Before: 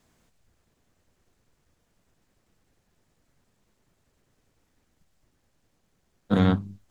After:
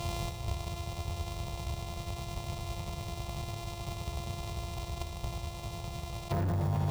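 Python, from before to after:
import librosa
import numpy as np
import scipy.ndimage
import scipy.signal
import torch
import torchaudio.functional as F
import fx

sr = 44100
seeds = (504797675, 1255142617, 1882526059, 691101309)

p1 = np.r_[np.sort(x[:len(x) // 128 * 128].reshape(-1, 128), axis=1).ravel(), x[len(x) // 128 * 128:]]
p2 = scipy.signal.sosfilt(scipy.signal.butter(2, 63.0, 'highpass', fs=sr, output='sos'), p1)
p3 = fx.env_lowpass_down(p2, sr, base_hz=860.0, full_db=-23.5)
p4 = fx.lowpass(p3, sr, hz=2600.0, slope=6)
p5 = fx.peak_eq(p4, sr, hz=460.0, db=-10.5, octaves=1.7)
p6 = fx.sample_hold(p5, sr, seeds[0], rate_hz=1800.0, jitter_pct=0)
p7 = p5 + F.gain(torch.from_numpy(p6), -11.5).numpy()
p8 = fx.fixed_phaser(p7, sr, hz=670.0, stages=4)
p9 = np.clip(p8, -10.0 ** (-30.0 / 20.0), 10.0 ** (-30.0 / 20.0))
p10 = p9 + fx.echo_feedback(p9, sr, ms=76, feedback_pct=47, wet_db=-12.5, dry=0)
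y = fx.env_flatten(p10, sr, amount_pct=100)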